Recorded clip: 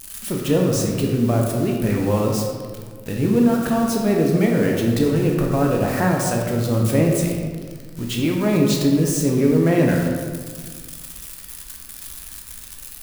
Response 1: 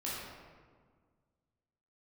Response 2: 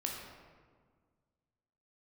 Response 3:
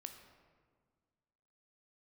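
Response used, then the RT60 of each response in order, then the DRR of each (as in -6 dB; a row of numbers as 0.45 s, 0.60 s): 2; 1.7 s, 1.7 s, 1.7 s; -8.0 dB, -1.0 dB, 5.5 dB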